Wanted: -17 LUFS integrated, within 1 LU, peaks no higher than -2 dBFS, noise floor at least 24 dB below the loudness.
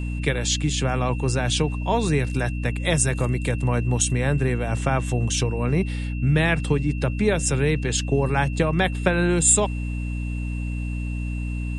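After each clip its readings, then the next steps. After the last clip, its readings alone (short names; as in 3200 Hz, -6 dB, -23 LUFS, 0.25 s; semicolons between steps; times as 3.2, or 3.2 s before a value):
hum 60 Hz; harmonics up to 300 Hz; hum level -25 dBFS; steady tone 2700 Hz; tone level -40 dBFS; loudness -23.0 LUFS; peak -5.5 dBFS; loudness target -17.0 LUFS
-> de-hum 60 Hz, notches 5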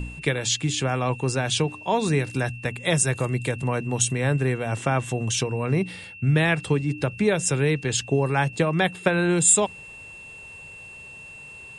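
hum none; steady tone 2700 Hz; tone level -40 dBFS
-> notch 2700 Hz, Q 30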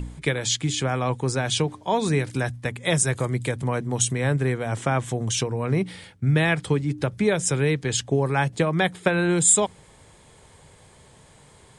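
steady tone none; loudness -23.5 LUFS; peak -5.0 dBFS; loudness target -17.0 LUFS
-> gain +6.5 dB; limiter -2 dBFS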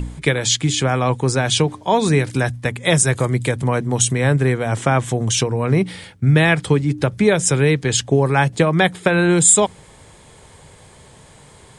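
loudness -17.0 LUFS; peak -2.0 dBFS; noise floor -46 dBFS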